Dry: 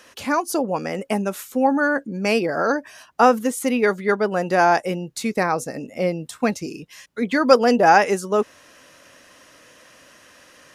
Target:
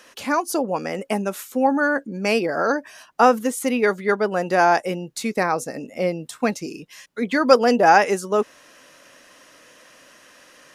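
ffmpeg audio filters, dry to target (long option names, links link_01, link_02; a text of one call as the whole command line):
ffmpeg -i in.wav -af "equalizer=frequency=76:width=1:gain=-10" out.wav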